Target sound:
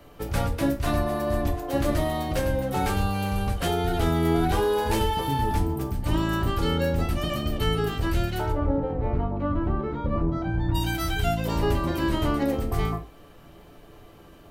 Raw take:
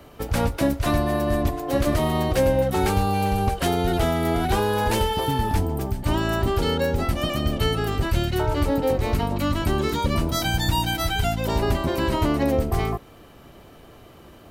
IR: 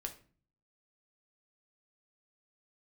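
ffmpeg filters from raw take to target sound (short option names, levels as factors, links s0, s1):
-filter_complex "[0:a]asplit=3[s0][s1][s2];[s0]afade=t=out:st=8.51:d=0.02[s3];[s1]lowpass=1100,afade=t=in:st=8.51:d=0.02,afade=t=out:st=10.74:d=0.02[s4];[s2]afade=t=in:st=10.74:d=0.02[s5];[s3][s4][s5]amix=inputs=3:normalize=0[s6];[1:a]atrim=start_sample=2205,afade=t=out:st=0.19:d=0.01,atrim=end_sample=8820[s7];[s6][s7]afir=irnorm=-1:irlink=0,volume=0.841"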